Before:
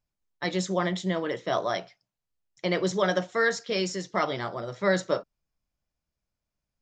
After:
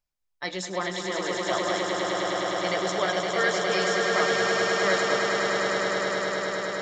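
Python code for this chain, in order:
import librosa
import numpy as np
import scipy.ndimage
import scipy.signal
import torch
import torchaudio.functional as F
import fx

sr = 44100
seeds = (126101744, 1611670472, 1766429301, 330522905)

y = fx.peak_eq(x, sr, hz=150.0, db=-9.5, octaves=3.0)
y = fx.echo_swell(y, sr, ms=103, loudest=8, wet_db=-5.5)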